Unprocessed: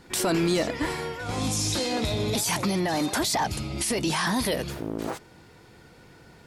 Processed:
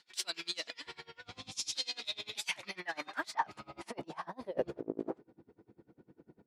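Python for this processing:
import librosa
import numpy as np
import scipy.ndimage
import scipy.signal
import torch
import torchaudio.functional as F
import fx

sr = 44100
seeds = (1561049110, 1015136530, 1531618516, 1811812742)

y = fx.riaa(x, sr, side='playback', at=(0.85, 1.51), fade=0.02)
y = fx.over_compress(y, sr, threshold_db=-29.0, ratio=-0.5, at=(3.92, 4.69), fade=0.02)
y = fx.filter_sweep_bandpass(y, sr, from_hz=3900.0, to_hz=290.0, start_s=1.91, end_s=5.37, q=1.6)
y = y * 10.0 ** (-27 * (0.5 - 0.5 * np.cos(2.0 * np.pi * 10.0 * np.arange(len(y)) / sr)) / 20.0)
y = y * 10.0 ** (2.0 / 20.0)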